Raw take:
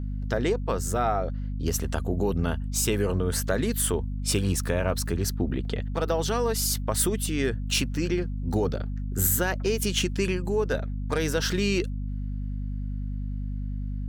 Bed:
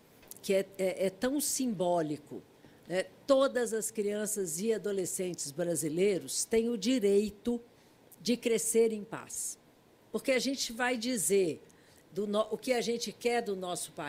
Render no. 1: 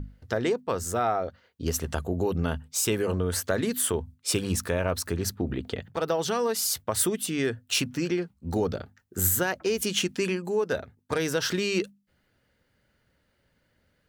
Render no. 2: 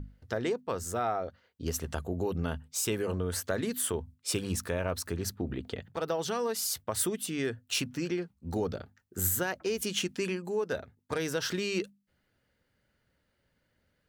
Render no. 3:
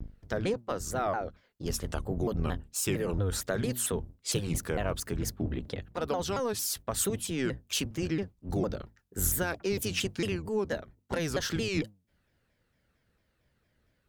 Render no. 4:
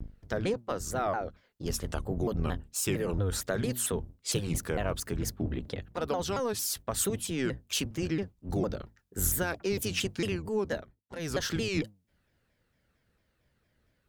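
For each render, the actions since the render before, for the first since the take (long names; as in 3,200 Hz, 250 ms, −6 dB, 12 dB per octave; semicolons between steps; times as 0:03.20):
mains-hum notches 50/100/150/200/250 Hz
level −5 dB
sub-octave generator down 1 octave, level −1 dB; pitch modulation by a square or saw wave saw down 4.4 Hz, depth 250 cents
0:10.78–0:11.33: duck −22.5 dB, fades 0.24 s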